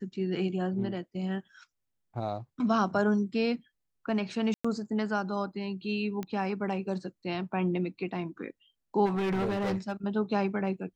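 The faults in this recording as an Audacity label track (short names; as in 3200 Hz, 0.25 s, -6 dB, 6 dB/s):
4.540000	4.640000	gap 0.105 s
6.230000	6.230000	pop -22 dBFS
9.050000	9.920000	clipped -26 dBFS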